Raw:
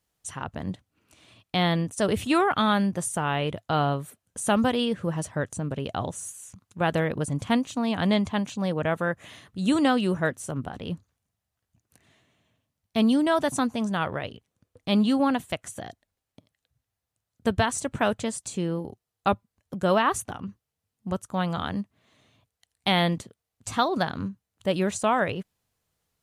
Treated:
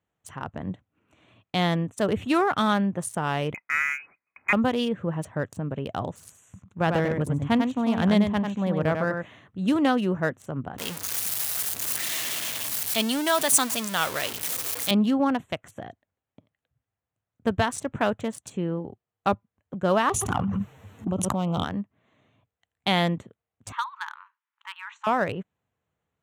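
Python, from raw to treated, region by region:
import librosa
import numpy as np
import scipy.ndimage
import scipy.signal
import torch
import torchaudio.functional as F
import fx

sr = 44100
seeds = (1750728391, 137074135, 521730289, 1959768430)

y = fx.chain(x, sr, fx.steep_highpass(hz=160.0, slope=48),
    fx.freq_invert(carrier_hz=2700), at=(3.54, 4.53))
y = fx.chain(y, sr, fx.low_shelf(hz=74.0, db=11.5),
    fx.echo_single(ms=96, db=-5.0), at=(6.18, 9.23))
y = fx.chain(y, sr, fx.zero_step(step_db=-29.5),
    fx.tilt_eq(slope=4.0), at=(10.78, 14.91))
y = fx.chain(y, sr, fx.env_flanger(rest_ms=11.6, full_db=-27.0),
    fx.echo_single(ms=120, db=-23.5),
    fx.env_flatten(amount_pct=100), at=(20.09, 21.64))
y = fx.chain(y, sr, fx.brickwall_highpass(low_hz=840.0),
    fx.air_absorb(metres=190.0),
    fx.band_squash(depth_pct=40), at=(23.72, 25.07))
y = fx.wiener(y, sr, points=9)
y = scipy.signal.sosfilt(scipy.signal.butter(2, 77.0, 'highpass', fs=sr, output='sos'), y)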